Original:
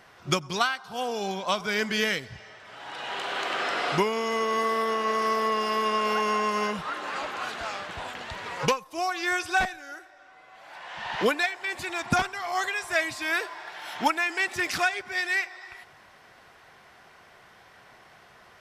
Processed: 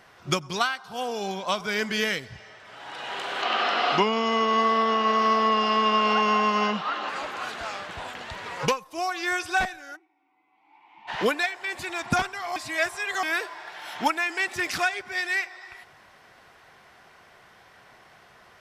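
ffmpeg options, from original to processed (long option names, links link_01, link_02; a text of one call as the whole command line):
ffmpeg -i in.wav -filter_complex "[0:a]asettb=1/sr,asplit=3[link_01][link_02][link_03];[link_01]atrim=end=3.424[link_04];[link_02]atrim=start=3.42:end=7.09,asetpts=PTS-STARTPTS,afade=type=in:duration=0.004:curve=qsin,afade=type=out:start_time=3.666:duration=0.004:curve=qsin,highpass=200,equalizer=frequency=220:width_type=q:width=4:gain=9,equalizer=frequency=750:width_type=q:width=4:gain=7,equalizer=frequency=1200:width_type=q:width=4:gain=6,equalizer=frequency=2900:width_type=q:width=4:gain=7,equalizer=frequency=4200:width_type=q:width=4:gain=4,lowpass=frequency=6300:width=0.5412,lowpass=frequency=6300:width=1.3066[link_05];[link_03]atrim=start=7.086[link_06];[link_04][link_05]acrossfade=duration=0.004:curve1=hsin:curve2=qsin[link_07];[link_07][link_06]acrossfade=duration=0.004:curve1=qsin:curve2=hsin,asplit=3[link_08][link_09][link_10];[link_08]afade=type=out:start_time=9.95:duration=0.02[link_11];[link_09]asplit=3[link_12][link_13][link_14];[link_12]bandpass=frequency=300:width_type=q:width=8,volume=0dB[link_15];[link_13]bandpass=frequency=870:width_type=q:width=8,volume=-6dB[link_16];[link_14]bandpass=frequency=2240:width_type=q:width=8,volume=-9dB[link_17];[link_15][link_16][link_17]amix=inputs=3:normalize=0,afade=type=in:start_time=9.95:duration=0.02,afade=type=out:start_time=11.07:duration=0.02[link_18];[link_10]afade=type=in:start_time=11.07:duration=0.02[link_19];[link_11][link_18][link_19]amix=inputs=3:normalize=0,asplit=3[link_20][link_21][link_22];[link_20]atrim=end=12.562[link_23];[link_21]atrim=start=12.558:end=13.232,asetpts=PTS-STARTPTS,areverse[link_24];[link_22]atrim=start=13.228[link_25];[link_23][link_24]acrossfade=duration=0.004:curve1=hsin:curve2=hsin[link_26];[link_26][link_25]acrossfade=duration=0.004:curve1=hsin:curve2=hsin" out.wav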